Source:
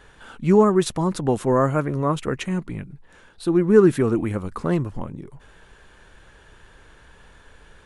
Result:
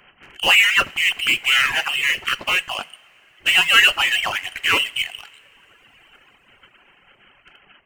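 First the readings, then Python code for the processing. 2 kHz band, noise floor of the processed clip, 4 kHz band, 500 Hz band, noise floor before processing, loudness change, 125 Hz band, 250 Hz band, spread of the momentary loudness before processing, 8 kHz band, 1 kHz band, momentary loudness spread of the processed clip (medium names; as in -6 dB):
+20.5 dB, -56 dBFS, +23.5 dB, -15.5 dB, -51 dBFS, +4.0 dB, -21.0 dB, -21.5 dB, 17 LU, +8.5 dB, +1.5 dB, 11 LU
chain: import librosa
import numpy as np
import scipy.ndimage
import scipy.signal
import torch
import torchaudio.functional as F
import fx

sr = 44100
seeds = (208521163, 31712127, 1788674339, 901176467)

p1 = fx.spec_clip(x, sr, under_db=23)
p2 = fx.freq_invert(p1, sr, carrier_hz=3100)
p3 = fx.fuzz(p2, sr, gain_db=27.0, gate_db=-35.0)
p4 = p2 + F.gain(torch.from_numpy(p3), -4.5).numpy()
p5 = fx.rev_double_slope(p4, sr, seeds[0], early_s=0.47, late_s=4.4, knee_db=-18, drr_db=7.0)
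p6 = fx.dereverb_blind(p5, sr, rt60_s=1.6)
y = F.gain(torch.from_numpy(p6), -2.0).numpy()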